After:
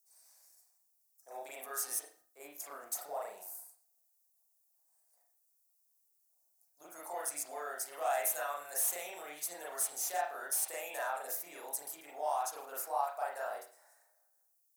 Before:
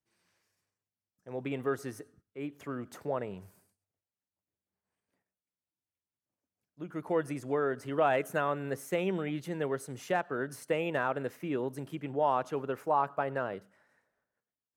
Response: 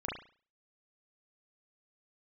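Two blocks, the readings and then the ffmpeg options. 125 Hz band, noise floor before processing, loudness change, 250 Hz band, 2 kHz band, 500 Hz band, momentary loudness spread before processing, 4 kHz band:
under -35 dB, under -85 dBFS, -4.0 dB, -24.5 dB, -6.0 dB, -10.0 dB, 13 LU, -0.5 dB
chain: -filter_complex "[0:a]acrossover=split=1500[s0][s1];[s0]acompressor=threshold=0.0126:ratio=5[s2];[s2][s1]amix=inputs=2:normalize=0,aexciter=amount=10.2:drive=7.9:freq=4600,asoftclip=type=tanh:threshold=0.0794,highpass=f=720:t=q:w=4.9,crystalizer=i=1:c=0[s3];[1:a]atrim=start_sample=2205[s4];[s3][s4]afir=irnorm=-1:irlink=0,volume=0.376"

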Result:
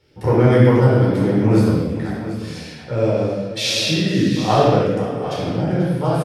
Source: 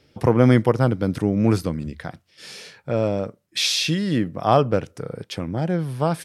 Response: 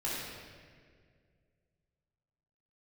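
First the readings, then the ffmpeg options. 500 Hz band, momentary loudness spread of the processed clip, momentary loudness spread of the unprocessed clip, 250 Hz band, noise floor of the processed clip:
+4.5 dB, 13 LU, 18 LU, +4.0 dB, -36 dBFS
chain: -filter_complex "[0:a]aeval=exprs='clip(val(0),-1,0.251)':c=same,aecho=1:1:489|739:0.188|0.251[s0];[1:a]atrim=start_sample=2205,afade=t=out:st=0.35:d=0.01,atrim=end_sample=15876[s1];[s0][s1]afir=irnorm=-1:irlink=0,volume=0.794"

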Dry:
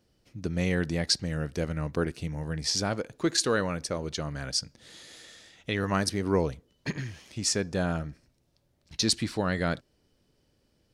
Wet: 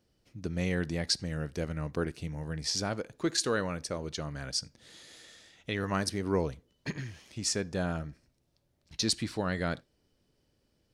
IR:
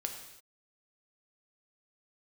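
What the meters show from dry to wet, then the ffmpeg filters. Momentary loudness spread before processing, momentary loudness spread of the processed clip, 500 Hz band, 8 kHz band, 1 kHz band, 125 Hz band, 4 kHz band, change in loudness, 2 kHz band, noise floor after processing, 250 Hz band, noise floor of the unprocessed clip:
15 LU, 15 LU, -3.5 dB, -3.5 dB, -3.5 dB, -3.5 dB, -3.5 dB, -3.5 dB, -3.5 dB, -74 dBFS, -3.5 dB, -71 dBFS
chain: -filter_complex "[0:a]asplit=2[s0][s1];[1:a]atrim=start_sample=2205,atrim=end_sample=6174,asetrate=61740,aresample=44100[s2];[s1][s2]afir=irnorm=-1:irlink=0,volume=0.168[s3];[s0][s3]amix=inputs=2:normalize=0,volume=0.596"

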